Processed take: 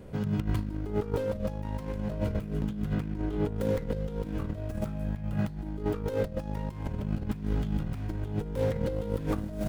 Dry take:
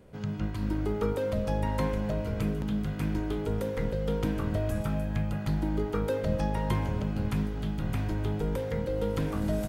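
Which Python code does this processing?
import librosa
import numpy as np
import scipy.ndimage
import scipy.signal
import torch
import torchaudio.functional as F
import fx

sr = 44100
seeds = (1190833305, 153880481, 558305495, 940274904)

y = fx.tracing_dist(x, sr, depth_ms=0.26)
y = fx.low_shelf(y, sr, hz=410.0, db=4.5)
y = fx.over_compress(y, sr, threshold_db=-30.0, ratio=-0.5)
y = fx.high_shelf(y, sr, hz=4600.0, db=-7.5, at=(2.93, 3.56))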